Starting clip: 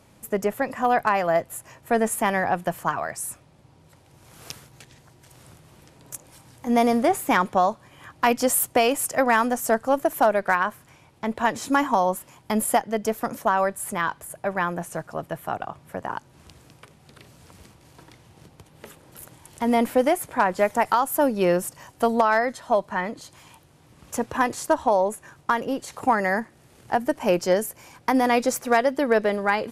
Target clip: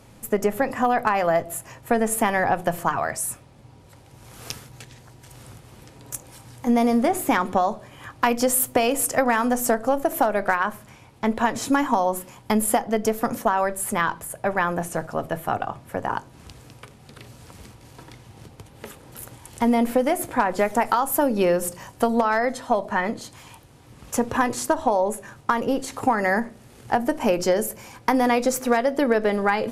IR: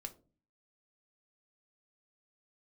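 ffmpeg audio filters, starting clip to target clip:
-filter_complex "[0:a]asplit=2[link_01][link_02];[1:a]atrim=start_sample=2205,lowshelf=frequency=140:gain=10[link_03];[link_02][link_03]afir=irnorm=-1:irlink=0,volume=0.5dB[link_04];[link_01][link_04]amix=inputs=2:normalize=0,acompressor=threshold=-16dB:ratio=6"

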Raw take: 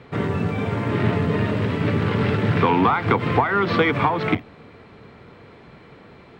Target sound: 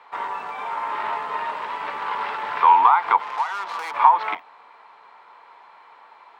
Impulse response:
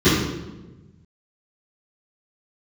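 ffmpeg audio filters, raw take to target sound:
-filter_complex "[0:a]asettb=1/sr,asplit=3[link_01][link_02][link_03];[link_01]atrim=end=0.684[link_04];[link_02]atrim=start=0.68:end=1.4,asetpts=PTS-STARTPTS,afade=type=in:duration=0.004:curve=qsin,afade=type=out:start_time=0.716:duration=0.004:curve=qsin,aeval=exprs='val(0)+0.0112*sin(2*PI*1300*n/s)':channel_layout=same[link_05];[link_03]atrim=start=1.396[link_06];[link_04][link_05]acrossfade=duration=0.004:curve1=hsin:curve2=qsin[link_07];[link_07][link_06]acrossfade=duration=0.004:curve1=qsin:curve2=hsin,asettb=1/sr,asplit=3[link_08][link_09][link_10];[link_08]atrim=end=3.224[link_11];[link_09]atrim=start=3.22:end=3.94,asetpts=PTS-STARTPTS,afade=type=in:duration=0.004:curve=qsin,afade=type=out:start_time=0.716:duration=0.004:curve=qsin,aeval=exprs='(tanh(17.8*val(0)+0.75)-tanh(0.75))/17.8':channel_layout=same[link_12];[link_10]atrim=start=3.936[link_13];[link_11][link_12]acrossfade=duration=0.004:curve1=hsin:curve2=qsin[link_14];[link_14][link_13]acrossfade=duration=0.004:curve1=qsin:curve2=hsin,highpass=frequency=930:width_type=q:width=5.8,volume=-5dB"

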